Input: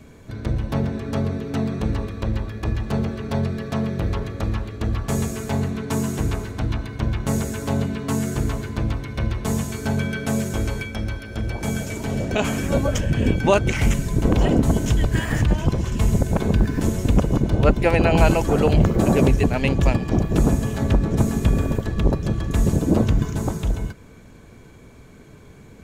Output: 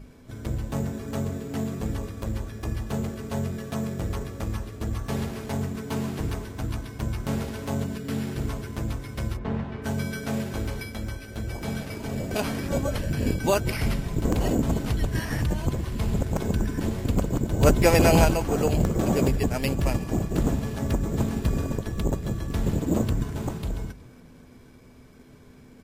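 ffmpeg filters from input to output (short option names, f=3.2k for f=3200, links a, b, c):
-filter_complex "[0:a]asplit=3[a][b][c];[a]afade=t=out:st=7.97:d=0.02[d];[b]asuperstop=centerf=890:order=4:qfactor=1.2,afade=t=in:st=7.97:d=0.02,afade=t=out:st=8.38:d=0.02[e];[c]afade=t=in:st=8.38:d=0.02[f];[d][e][f]amix=inputs=3:normalize=0,acrusher=samples=6:mix=1:aa=0.000001,asplit=6[g][h][i][j][k][l];[h]adelay=184,afreqshift=38,volume=-23dB[m];[i]adelay=368,afreqshift=76,volume=-27.2dB[n];[j]adelay=552,afreqshift=114,volume=-31.3dB[o];[k]adelay=736,afreqshift=152,volume=-35.5dB[p];[l]adelay=920,afreqshift=190,volume=-39.6dB[q];[g][m][n][o][p][q]amix=inputs=6:normalize=0,aeval=exprs='val(0)+0.02*(sin(2*PI*50*n/s)+sin(2*PI*2*50*n/s)/2+sin(2*PI*3*50*n/s)/3+sin(2*PI*4*50*n/s)/4+sin(2*PI*5*50*n/s)/5)':c=same,asplit=3[r][s][t];[r]afade=t=out:st=9.36:d=0.02[u];[s]lowpass=2.1k,afade=t=in:st=9.36:d=0.02,afade=t=out:st=9.83:d=0.02[v];[t]afade=t=in:st=9.83:d=0.02[w];[u][v][w]amix=inputs=3:normalize=0,asettb=1/sr,asplit=3[x][y][z];[x]atrim=end=17.614[aa];[y]atrim=start=17.61:end=18.25,asetpts=PTS-STARTPTS,afade=t=in:d=0.004:c=qsin,afade=t=out:st=0.636:d=0.004:c=qsin,acontrast=74[ab];[z]atrim=start=18.246[ac];[aa][ab]acrossfade=d=0.004:c1=hsin:c2=qsin[ad];[ad][ac]acrossfade=d=0.004:c1=qsin:c2=hsin,bandreject=f=50:t=h:w=6,bandreject=f=100:t=h:w=6,bandreject=f=150:t=h:w=6,bandreject=f=200:t=h:w=6,volume=-5.5dB" -ar 44100 -c:a libvorbis -b:a 48k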